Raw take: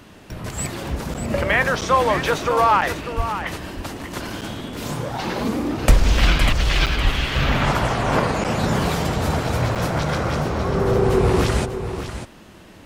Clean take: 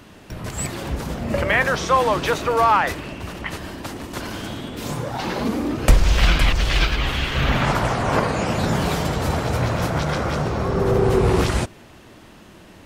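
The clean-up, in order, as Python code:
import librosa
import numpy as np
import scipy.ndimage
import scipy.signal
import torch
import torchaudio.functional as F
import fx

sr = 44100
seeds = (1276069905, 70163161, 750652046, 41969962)

y = fx.fix_deplosive(x, sr, at_s=(3.16, 7.03))
y = fx.fix_interpolate(y, sr, at_s=(1.14, 1.81, 2.81, 4.41, 6.86, 8.44, 9.75), length_ms=7.4)
y = fx.fix_echo_inverse(y, sr, delay_ms=595, level_db=-10.0)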